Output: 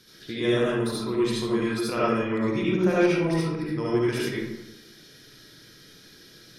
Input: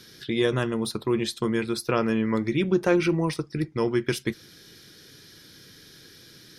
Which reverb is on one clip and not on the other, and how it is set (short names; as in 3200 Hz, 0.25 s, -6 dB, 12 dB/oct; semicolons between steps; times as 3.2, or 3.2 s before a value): digital reverb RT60 0.99 s, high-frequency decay 0.55×, pre-delay 30 ms, DRR -7.5 dB; gain -7.5 dB